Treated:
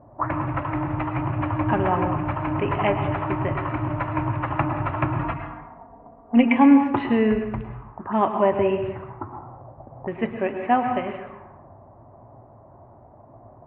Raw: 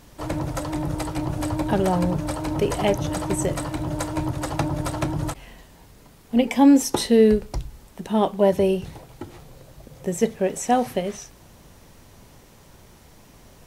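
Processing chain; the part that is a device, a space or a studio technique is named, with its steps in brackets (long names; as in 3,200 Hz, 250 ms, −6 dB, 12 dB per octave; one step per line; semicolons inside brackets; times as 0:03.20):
envelope filter bass rig (envelope-controlled low-pass 590–2,700 Hz up, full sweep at −24.5 dBFS; loudspeaker in its box 60–2,000 Hz, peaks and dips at 64 Hz −9 dB, 110 Hz +7 dB, 180 Hz −9 dB, 470 Hz −10 dB, 1,100 Hz +8 dB)
0:05.19–0:06.56: comb filter 4.3 ms, depth 90%
dense smooth reverb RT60 0.94 s, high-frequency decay 0.6×, pre-delay 95 ms, DRR 7 dB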